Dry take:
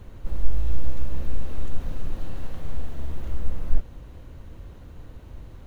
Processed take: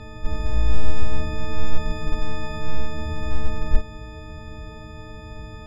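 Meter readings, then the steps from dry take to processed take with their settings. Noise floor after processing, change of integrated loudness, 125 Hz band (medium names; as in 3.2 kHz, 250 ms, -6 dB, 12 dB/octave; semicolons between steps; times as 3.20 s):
-39 dBFS, +5.5 dB, +4.5 dB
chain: partials quantised in pitch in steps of 6 st; distance through air 140 m; trim +7.5 dB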